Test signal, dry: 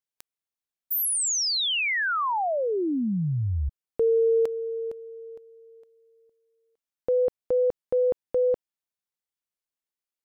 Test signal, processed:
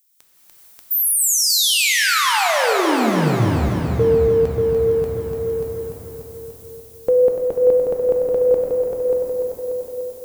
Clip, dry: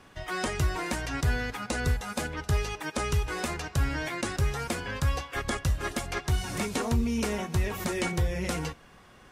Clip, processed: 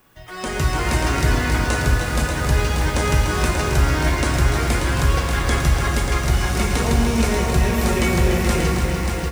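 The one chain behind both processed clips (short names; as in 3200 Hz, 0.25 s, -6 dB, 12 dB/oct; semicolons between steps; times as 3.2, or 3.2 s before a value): added noise violet -59 dBFS; on a send: multi-head echo 0.293 s, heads first and second, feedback 48%, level -8 dB; on the sum: plate-style reverb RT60 4.1 s, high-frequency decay 0.7×, DRR 0.5 dB; AGC gain up to 14.5 dB; gain -4.5 dB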